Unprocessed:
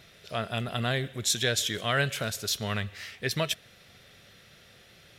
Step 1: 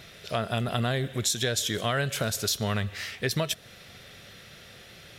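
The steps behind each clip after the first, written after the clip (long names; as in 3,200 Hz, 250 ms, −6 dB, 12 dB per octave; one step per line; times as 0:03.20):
dynamic equaliser 2,400 Hz, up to −5 dB, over −41 dBFS, Q 0.94
downward compressor, threshold −30 dBFS, peak gain reduction 7.5 dB
level +6.5 dB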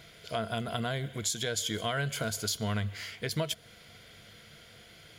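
EQ curve with evenly spaced ripples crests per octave 1.8, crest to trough 8 dB
level −5.5 dB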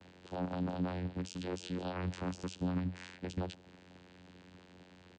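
comb filter 4.1 ms, depth 37%
brickwall limiter −26.5 dBFS, peak gain reduction 9 dB
channel vocoder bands 8, saw 90.3 Hz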